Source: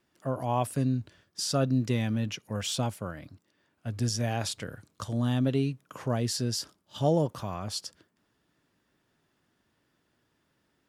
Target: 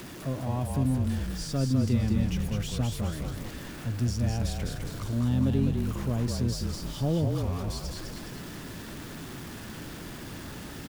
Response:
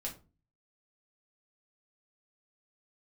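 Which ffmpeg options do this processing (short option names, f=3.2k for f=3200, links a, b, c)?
-filter_complex "[0:a]aeval=exprs='val(0)+0.5*0.0237*sgn(val(0))':c=same,acrossover=split=350[a][b];[b]acompressor=threshold=-57dB:ratio=1.5[c];[a][c]amix=inputs=2:normalize=0,asplit=2[d][e];[e]asplit=7[f][g][h][i][j][k][l];[f]adelay=205,afreqshift=-35,volume=-3.5dB[m];[g]adelay=410,afreqshift=-70,volume=-9.3dB[n];[h]adelay=615,afreqshift=-105,volume=-15.2dB[o];[i]adelay=820,afreqshift=-140,volume=-21dB[p];[j]adelay=1025,afreqshift=-175,volume=-26.9dB[q];[k]adelay=1230,afreqshift=-210,volume=-32.7dB[r];[l]adelay=1435,afreqshift=-245,volume=-38.6dB[s];[m][n][o][p][q][r][s]amix=inputs=7:normalize=0[t];[d][t]amix=inputs=2:normalize=0"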